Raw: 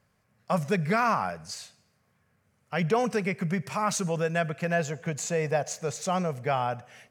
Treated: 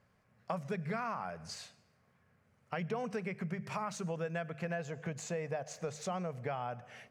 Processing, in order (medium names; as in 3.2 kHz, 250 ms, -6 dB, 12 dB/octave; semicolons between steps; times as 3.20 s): compression 5:1, threshold -35 dBFS, peak gain reduction 14 dB; treble shelf 5.3 kHz -11 dB; hum notches 50/100/150/200 Hz